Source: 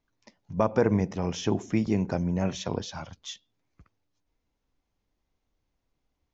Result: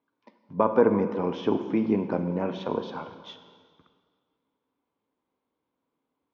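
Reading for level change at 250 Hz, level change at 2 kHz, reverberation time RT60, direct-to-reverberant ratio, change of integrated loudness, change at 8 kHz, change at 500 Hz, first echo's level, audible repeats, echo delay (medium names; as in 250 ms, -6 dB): +1.0 dB, -0.5 dB, 1.8 s, 8.0 dB, +1.5 dB, no reading, +4.0 dB, no echo, no echo, no echo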